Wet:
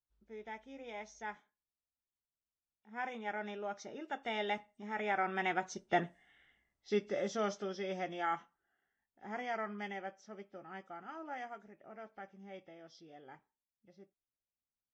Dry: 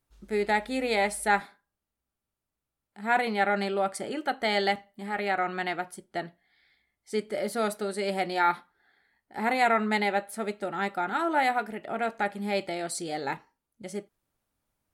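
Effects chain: nonlinear frequency compression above 2200 Hz 1.5:1; Doppler pass-by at 6.2, 13 m/s, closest 4.8 m; mismatched tape noise reduction decoder only; gain +3.5 dB

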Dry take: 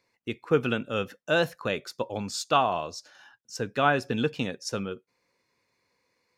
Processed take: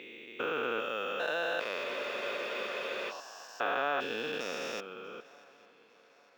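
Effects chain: stepped spectrum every 0.4 s; HPF 620 Hz 12 dB/oct; high shelf 6200 Hz -10 dB; in parallel at -2 dB: negative-ratio compressor -40 dBFS, ratio -1; on the sum: swung echo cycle 0.853 s, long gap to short 3:1, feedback 45%, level -23 dB; spectral freeze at 1.85, 1.24 s; decimation joined by straight lines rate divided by 2×

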